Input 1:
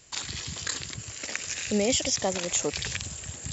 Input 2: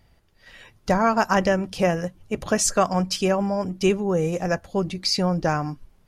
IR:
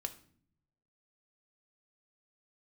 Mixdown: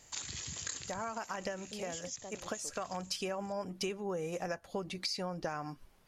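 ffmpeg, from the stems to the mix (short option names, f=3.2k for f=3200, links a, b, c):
-filter_complex "[0:a]equalizer=f=6.5k:w=5.4:g=9,volume=-8.5dB,afade=t=out:st=0.71:d=0.7:silence=0.251189,asplit=2[a][b];[1:a]lowshelf=f=280:g=-12,alimiter=limit=-14dB:level=0:latency=1:release=94,volume=0.5dB[c];[b]apad=whole_len=268108[d];[c][d]sidechaincompress=threshold=-56dB:ratio=10:attack=49:release=259[e];[a][e]amix=inputs=2:normalize=0,acompressor=threshold=-35dB:ratio=6"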